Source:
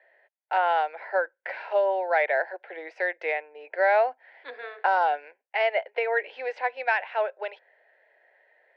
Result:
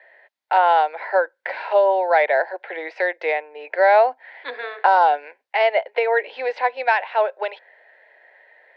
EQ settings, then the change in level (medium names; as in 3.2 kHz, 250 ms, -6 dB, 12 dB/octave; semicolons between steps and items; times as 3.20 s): graphic EQ 250/500/1000/2000/4000 Hz +9/+4/+9/+7/+11 dB; dynamic bell 2 kHz, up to -7 dB, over -30 dBFS, Q 0.89; 0.0 dB